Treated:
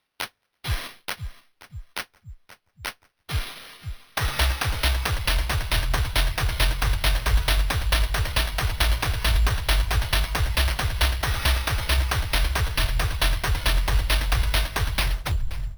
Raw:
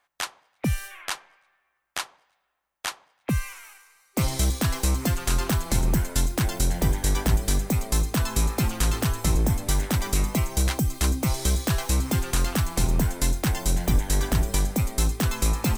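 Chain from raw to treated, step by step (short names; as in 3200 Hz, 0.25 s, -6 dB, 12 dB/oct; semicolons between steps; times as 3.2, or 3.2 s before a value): tape stop at the end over 0.83 s; inverse Chebyshev band-stop 290–4400 Hz, stop band 50 dB; resonant high shelf 6400 Hz +8.5 dB, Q 3; darkening echo 0.527 s, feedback 64%, low-pass 3900 Hz, level -7 dB; careless resampling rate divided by 6×, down none, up hold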